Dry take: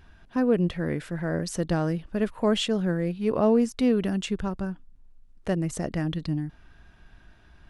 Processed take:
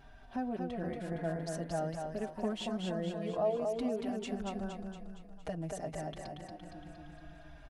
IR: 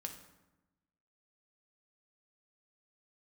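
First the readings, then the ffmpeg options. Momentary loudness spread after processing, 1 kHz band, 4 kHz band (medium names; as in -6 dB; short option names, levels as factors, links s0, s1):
16 LU, -5.0 dB, -12.0 dB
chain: -filter_complex "[0:a]acompressor=threshold=0.00631:ratio=2,equalizer=f=700:w=3.6:g=14.5,aecho=1:1:232|464|696|928|1160|1392|1624|1856:0.631|0.353|0.198|0.111|0.0621|0.0347|0.0195|0.0109,asplit=2[s0][s1];[s1]adelay=4.6,afreqshift=-0.51[s2];[s0][s2]amix=inputs=2:normalize=1"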